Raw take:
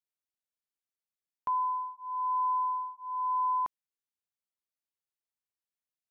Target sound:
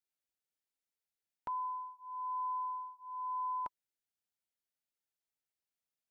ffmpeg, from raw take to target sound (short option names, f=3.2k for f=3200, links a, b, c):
-filter_complex "[0:a]asettb=1/sr,asplit=3[a][b][c];[a]atrim=end=1.654[d];[b]atrim=start=1.65:end=3.65,asetpts=PTS-STARTPTS,afade=t=in:d=0.004:c=qsin,afade=t=out:st=1.996:d=0.004:c=qsin,lowshelf=f=85:g=11.5[e];[c]atrim=start=3.646[f];[d][e]acrossfade=d=0.004:c1=hsin:c2=qsin[g];[g][f]acrossfade=d=0.004:c1=qsin:c2=hsin,asuperstop=centerf=1100:order=8:qfactor=4.9,volume=-1dB"